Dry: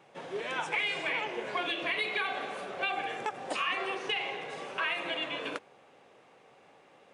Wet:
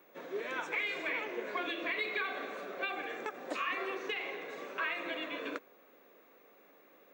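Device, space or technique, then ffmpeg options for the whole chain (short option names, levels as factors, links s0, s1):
old television with a line whistle: -af "highpass=f=210:w=0.5412,highpass=f=210:w=1.3066,equalizer=f=290:t=q:w=4:g=3,equalizer=f=820:t=q:w=4:g=-10,equalizer=f=3000:t=q:w=4:g=-9,equalizer=f=5000:t=q:w=4:g=-8,lowpass=f=6700:w=0.5412,lowpass=f=6700:w=1.3066,aeval=exprs='val(0)+0.000631*sin(2*PI*15625*n/s)':c=same,volume=0.841"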